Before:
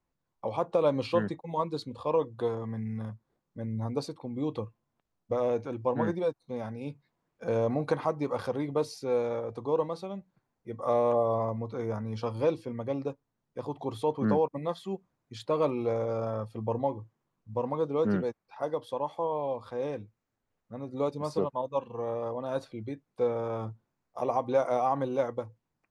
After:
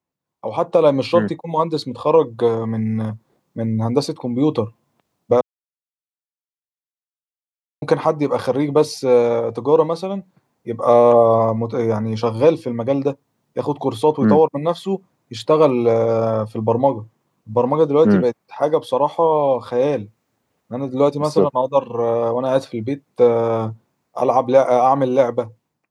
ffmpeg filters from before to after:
-filter_complex "[0:a]asplit=3[s0][s1][s2];[s0]atrim=end=5.41,asetpts=PTS-STARTPTS,afade=t=out:st=5.406:d=0.004:c=hsin[s3];[s1]atrim=start=5.41:end=7.82,asetpts=PTS-STARTPTS,volume=0[s4];[s2]atrim=start=7.82,asetpts=PTS-STARTPTS,afade=t=in:d=0.004:c=hsin[s5];[s3][s4][s5]concat=n=3:v=0:a=1,highpass=110,equalizer=f=1500:w=2.4:g=-3,dynaudnorm=f=200:g=5:m=6.31"

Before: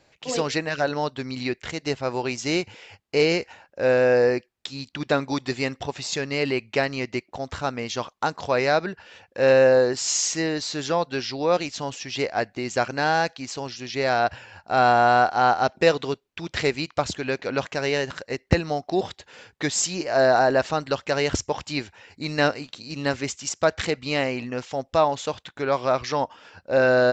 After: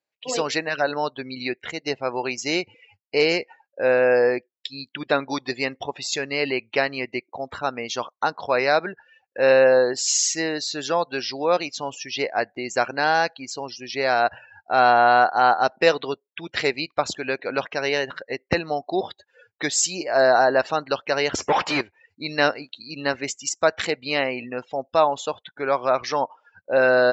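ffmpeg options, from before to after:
-filter_complex "[0:a]asettb=1/sr,asplit=3[s0][s1][s2];[s0]atrim=end=21.384[s3];[s1]atrim=start=21.38:end=21.81,asetpts=PTS-STARTPTS,afade=t=in:d=0.004:c=qsin,afade=t=out:st=0.426:d=0.004:c=qsin,asplit=2[s4][s5];[s5]highpass=f=720:p=1,volume=56.2,asoftclip=type=tanh:threshold=0.282[s6];[s4][s6]amix=inputs=2:normalize=0,lowpass=f=1100:p=1,volume=0.501[s7];[s2]atrim=start=21.806[s8];[s3][s7]acrossfade=d=0.004:c1=hsin:c2=qsin[s9];[s9][s8]acrossfade=d=0.004:c1=qsin:c2=hsin,afftdn=nr=29:nf=-38,highpass=f=440:p=1,volume=1.41"

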